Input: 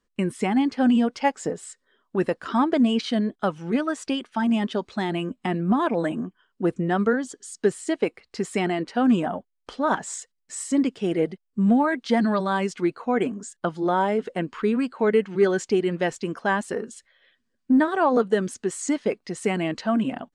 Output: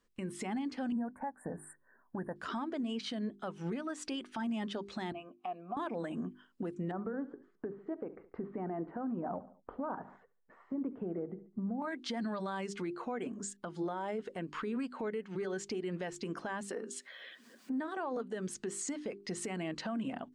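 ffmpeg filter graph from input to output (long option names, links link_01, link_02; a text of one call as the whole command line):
ffmpeg -i in.wav -filter_complex "[0:a]asettb=1/sr,asplit=3[link_01][link_02][link_03];[link_01]atrim=end=0.924[link_04];[link_02]atrim=start=0.92:end=2.36,asetpts=PTS-STARTPTS,afade=type=in:duration=0.004:curve=qsin,afade=type=out:start_time=1.436:duration=0.004:curve=qsin,asuperstop=centerf=4300:order=12:qfactor=0.55,aecho=1:1:1.2:0.56,atrim=end_sample=63504[link_05];[link_03]atrim=start=2.356[link_06];[link_04][link_05]acrossfade=duration=0.004:curve1=hsin:curve2=qsin[link_07];[link_07][link_06]acrossfade=duration=0.004:curve1=qsin:curve2=hsin,asettb=1/sr,asplit=3[link_08][link_09][link_10];[link_08]atrim=end=5.124[link_11];[link_09]atrim=start=5.12:end=5.77,asetpts=PTS-STARTPTS,afade=type=in:duration=0.004:curve=qsin,afade=type=out:start_time=0.646:duration=0.004:curve=qsin,acompressor=mode=upward:threshold=-33dB:ratio=2.5:attack=3.2:release=140:knee=2.83:detection=peak,asplit=3[link_12][link_13][link_14];[link_12]bandpass=frequency=730:width_type=q:width=8,volume=0dB[link_15];[link_13]bandpass=frequency=1090:width_type=q:width=8,volume=-6dB[link_16];[link_14]bandpass=frequency=2440:width_type=q:width=8,volume=-9dB[link_17];[link_15][link_16][link_17]amix=inputs=3:normalize=0[link_18];[link_10]atrim=start=5.766[link_19];[link_11][link_18]acrossfade=duration=0.004:curve1=hsin:curve2=qsin[link_20];[link_20][link_19]acrossfade=duration=0.004:curve1=qsin:curve2=hsin,asettb=1/sr,asplit=3[link_21][link_22][link_23];[link_21]atrim=end=6.914[link_24];[link_22]atrim=start=6.91:end=11.82,asetpts=PTS-STARTPTS,afade=type=in:duration=0.004:curve=qsin,afade=type=out:start_time=4.906:duration=0.004:curve=qsin,lowpass=frequency=1300:width=0.5412,lowpass=frequency=1300:width=1.3066,acompressor=threshold=-24dB:ratio=3:attack=3.2:release=140:knee=1:detection=peak,aecho=1:1:71|142|213:0.1|0.039|0.0152,atrim=end_sample=216531[link_25];[link_23]atrim=start=11.816[link_26];[link_24][link_25]acrossfade=duration=0.004:curve1=hsin:curve2=qsin[link_27];[link_27][link_26]acrossfade=duration=0.004:curve1=qsin:curve2=hsin,asettb=1/sr,asplit=3[link_28][link_29][link_30];[link_28]atrim=end=16.694[link_31];[link_29]atrim=start=16.69:end=17.97,asetpts=PTS-STARTPTS,afade=type=in:duration=0.004:curve=qsin,afade=type=out:start_time=1.276:duration=0.004:curve=qsin,highpass=frequency=210:width=0.5412,highpass=frequency=210:width=1.3066,acompressor=mode=upward:threshold=-38dB:ratio=2.5:attack=3.2:release=140:knee=2.83:detection=peak[link_32];[link_30]atrim=start=17.966[link_33];[link_31][link_32]acrossfade=duration=0.004:curve1=hsin:curve2=qsin[link_34];[link_34][link_33]acrossfade=duration=0.004:curve1=qsin:curve2=hsin,acompressor=threshold=-32dB:ratio=2,bandreject=frequency=50:width_type=h:width=6,bandreject=frequency=100:width_type=h:width=6,bandreject=frequency=150:width_type=h:width=6,bandreject=frequency=200:width_type=h:width=6,bandreject=frequency=250:width_type=h:width=6,bandreject=frequency=300:width_type=h:width=6,bandreject=frequency=350:width_type=h:width=6,bandreject=frequency=400:width_type=h:width=6,alimiter=level_in=5.5dB:limit=-24dB:level=0:latency=1:release=208,volume=-5.5dB" out.wav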